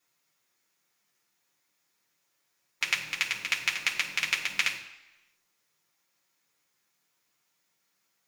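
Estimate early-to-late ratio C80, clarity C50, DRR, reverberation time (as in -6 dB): 11.5 dB, 9.0 dB, -2.5 dB, 1.0 s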